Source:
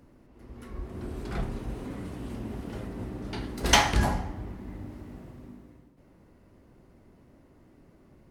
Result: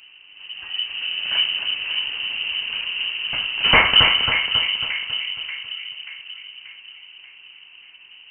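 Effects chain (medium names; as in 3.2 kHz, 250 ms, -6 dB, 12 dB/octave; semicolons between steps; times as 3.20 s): two-band feedback delay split 1.2 kHz, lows 584 ms, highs 273 ms, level -7 dB; wavefolder -12 dBFS; frequency inversion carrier 3 kHz; trim +8.5 dB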